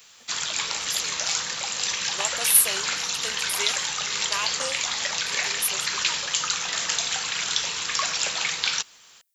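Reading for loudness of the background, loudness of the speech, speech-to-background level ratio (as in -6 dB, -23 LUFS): -24.5 LUFS, -25.0 LUFS, -0.5 dB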